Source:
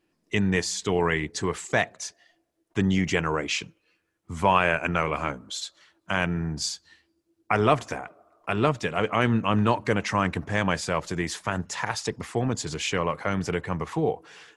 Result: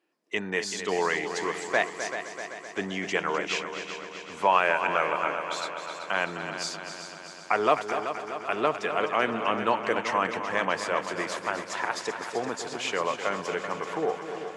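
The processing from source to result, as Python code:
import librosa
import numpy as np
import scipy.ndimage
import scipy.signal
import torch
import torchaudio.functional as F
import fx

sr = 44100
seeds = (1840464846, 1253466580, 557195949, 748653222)

p1 = scipy.signal.sosfilt(scipy.signal.butter(2, 410.0, 'highpass', fs=sr, output='sos'), x)
p2 = fx.high_shelf(p1, sr, hz=4200.0, db=-7.5)
y = p2 + fx.echo_heads(p2, sr, ms=128, heads='second and third', feedback_pct=65, wet_db=-10.0, dry=0)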